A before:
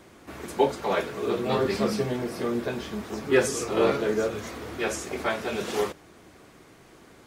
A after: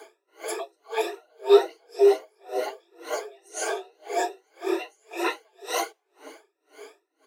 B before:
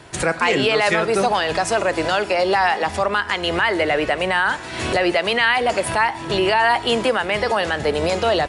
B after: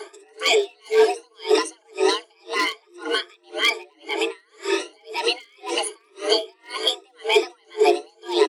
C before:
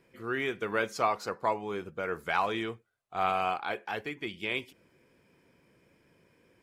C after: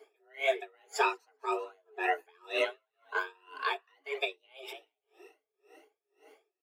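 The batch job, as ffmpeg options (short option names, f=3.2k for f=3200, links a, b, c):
-filter_complex "[0:a]afftfilt=real='re*pow(10,18/40*sin(2*PI*(1.7*log(max(b,1)*sr/1024/100)/log(2)-(2.2)*(pts-256)/sr)))':imag='im*pow(10,18/40*sin(2*PI*(1.7*log(max(b,1)*sr/1024/100)/log(2)-(2.2)*(pts-256)/sr)))':win_size=1024:overlap=0.75,asplit=4[a][b][c][d];[b]adelay=195,afreqshift=40,volume=-21dB[e];[c]adelay=390,afreqshift=80,volume=-29dB[f];[d]adelay=585,afreqshift=120,volume=-36.9dB[g];[a][e][f][g]amix=inputs=4:normalize=0,flanger=delay=0.9:depth=7.4:regen=-18:speed=1.7:shape=triangular,lowshelf=f=200:t=q:w=3:g=6,asoftclip=type=hard:threshold=-9.5dB,acrossover=split=300|3000[h][i][j];[i]acompressor=threshold=-35dB:ratio=4[k];[h][k][j]amix=inputs=3:normalize=0,adynamicequalizer=threshold=0.00708:dfrequency=2200:dqfactor=2.3:tfrequency=2200:tqfactor=2.3:attack=5:release=100:ratio=0.375:range=1.5:mode=boostabove:tftype=bell,asoftclip=type=tanh:threshold=-9dB,afreqshift=270,aeval=exprs='val(0)*pow(10,-39*(0.5-0.5*cos(2*PI*1.9*n/s))/20)':c=same,volume=8dB"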